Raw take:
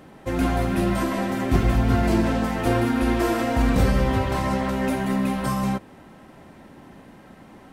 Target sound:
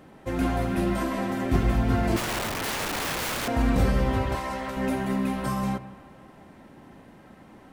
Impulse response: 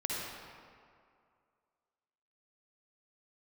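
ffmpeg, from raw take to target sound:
-filter_complex "[0:a]asettb=1/sr,asplit=3[s0][s1][s2];[s0]atrim=end=2.164[s3];[s1]atrim=start=2.16:end=3.48,asetpts=PTS-STARTPTS,afade=t=in:d=0.004:c=qsin,afade=t=out:st=1.316:d=0.004:c=qsin,aeval=exprs='(mod(11.2*val(0)+1,2)-1)/11.2':c=same[s4];[s2]atrim=start=3.476[s5];[s3][s4]acrossfade=d=0.004:c1=hsin:c2=qsin[s6];[s6][s5]acrossfade=d=0.004:c1=qsin:c2=hsin,asettb=1/sr,asplit=3[s7][s8][s9];[s7]atrim=end=4.354[s10];[s8]atrim=start=4.35:end=4.77,asetpts=PTS-STARTPTS,afade=t=in:d=0.004:c=qsin,afade=t=out:st=0.416:d=0.004:c=qsin,highpass=f=600:p=1[s11];[s9]atrim=start=4.766[s12];[s10][s11]acrossfade=d=0.004:c1=hsin:c2=qsin[s13];[s13][s12]acrossfade=d=0.004:c1=qsin:c2=hsin,asplit=2[s14][s15];[1:a]atrim=start_sample=2205,lowpass=3500[s16];[s15][s16]afir=irnorm=-1:irlink=0,volume=0.15[s17];[s14][s17]amix=inputs=2:normalize=0,volume=0.596"

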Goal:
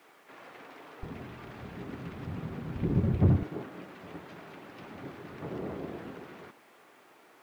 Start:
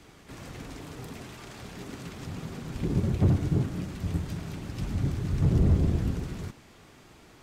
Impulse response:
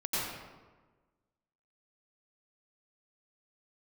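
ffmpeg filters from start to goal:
-af "lowpass=2300,acrusher=bits=10:mix=0:aa=0.000001,asetnsamples=n=441:p=0,asendcmd='1.03 highpass f 61;3.43 highpass f 440',highpass=530"

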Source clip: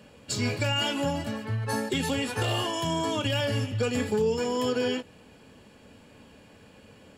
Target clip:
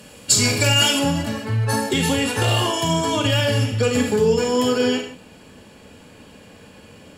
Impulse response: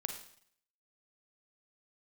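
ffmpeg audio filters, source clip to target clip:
-filter_complex "[0:a]asetnsamples=n=441:p=0,asendcmd='0.99 equalizer g 3.5',equalizer=f=11000:w=0.37:g=14[s0];[1:a]atrim=start_sample=2205,afade=t=out:st=0.22:d=0.01,atrim=end_sample=10143[s1];[s0][s1]afir=irnorm=-1:irlink=0,volume=2.37"

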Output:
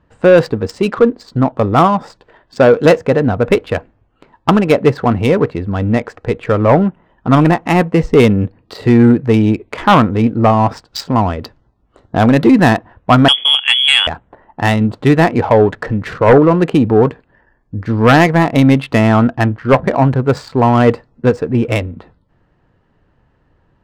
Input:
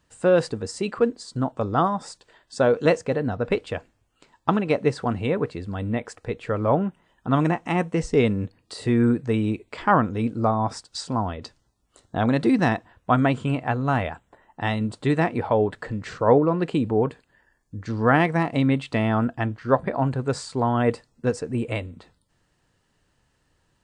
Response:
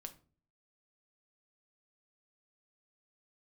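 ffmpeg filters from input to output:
-filter_complex "[0:a]adynamicsmooth=sensitivity=5:basefreq=1700,asettb=1/sr,asplit=3[s0][s1][s2];[s0]atrim=end=13.284[s3];[s1]atrim=start=13.28:end=14.07,asetpts=PTS-STARTPTS,afade=t=in:d=0.004:c=qsin,afade=t=out:st=0.786:d=0.004:c=qsin,lowpass=f=3000:t=q:w=0.5098,lowpass=f=3000:t=q:w=0.6013,lowpass=f=3000:t=q:w=0.9,lowpass=f=3000:t=q:w=2.563,afreqshift=-3500[s4];[s2]atrim=start=14.066[s5];[s3][s4]acrossfade=d=0.004:c1=hsin:c2=qsin[s6];[s6][s5]acrossfade=d=0.004:c1=qsin:c2=hsin,aeval=exprs='0.631*sin(PI/2*2*val(0)/0.631)':c=same,volume=1.33"

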